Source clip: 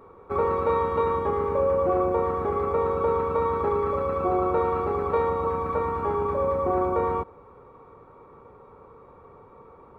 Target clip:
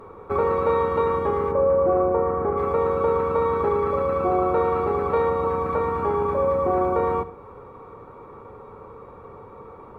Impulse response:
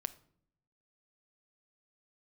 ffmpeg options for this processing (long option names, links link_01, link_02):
-filter_complex "[1:a]atrim=start_sample=2205,atrim=end_sample=3969,asetrate=29988,aresample=44100[link_01];[0:a][link_01]afir=irnorm=-1:irlink=0,asplit=2[link_02][link_03];[link_03]acompressor=threshold=-34dB:ratio=6,volume=0dB[link_04];[link_02][link_04]amix=inputs=2:normalize=0,asplit=3[link_05][link_06][link_07];[link_05]afade=type=out:start_time=1.51:duration=0.02[link_08];[link_06]lowpass=1600,afade=type=in:start_time=1.51:duration=0.02,afade=type=out:start_time=2.56:duration=0.02[link_09];[link_07]afade=type=in:start_time=2.56:duration=0.02[link_10];[link_08][link_09][link_10]amix=inputs=3:normalize=0"